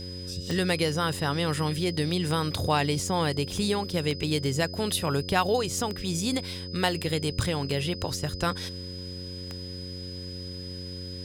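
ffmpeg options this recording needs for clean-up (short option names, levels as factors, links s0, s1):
-af "adeclick=t=4,bandreject=f=90.6:t=h:w=4,bandreject=f=181.2:t=h:w=4,bandreject=f=271.8:t=h:w=4,bandreject=f=362.4:t=h:w=4,bandreject=f=453:t=h:w=4,bandreject=f=543.6:t=h:w=4,bandreject=f=5000:w=30"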